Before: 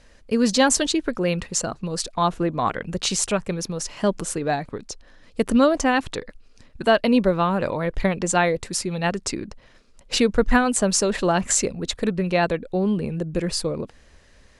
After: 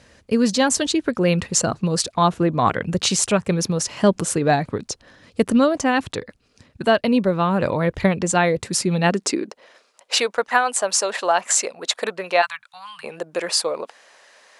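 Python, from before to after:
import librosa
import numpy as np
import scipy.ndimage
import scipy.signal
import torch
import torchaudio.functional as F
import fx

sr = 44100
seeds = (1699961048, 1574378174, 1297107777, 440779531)

y = fx.filter_sweep_highpass(x, sr, from_hz=95.0, to_hz=730.0, start_s=8.6, end_s=9.91, q=1.4)
y = fx.rider(y, sr, range_db=4, speed_s=0.5)
y = fx.ellip_bandstop(y, sr, low_hz=120.0, high_hz=1100.0, order=3, stop_db=60, at=(12.41, 13.03), fade=0.02)
y = y * librosa.db_to_amplitude(2.5)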